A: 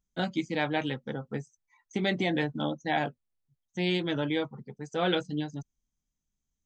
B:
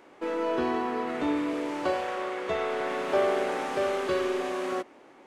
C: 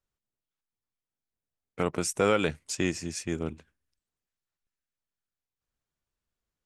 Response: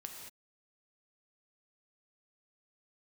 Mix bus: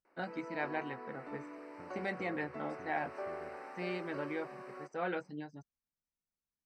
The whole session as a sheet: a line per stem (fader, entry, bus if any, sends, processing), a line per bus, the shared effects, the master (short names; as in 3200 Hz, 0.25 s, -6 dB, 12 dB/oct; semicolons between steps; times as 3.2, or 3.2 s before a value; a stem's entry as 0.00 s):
-5.0 dB, 0.00 s, no send, dry
-14.0 dB, 0.05 s, no send, dry
-17.0 dB, 0.00 s, no send, tilt -3.5 dB/oct; compressor 2:1, threshold -32 dBFS, peak gain reduction 10 dB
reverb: off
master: running mean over 13 samples; tilt +3.5 dB/oct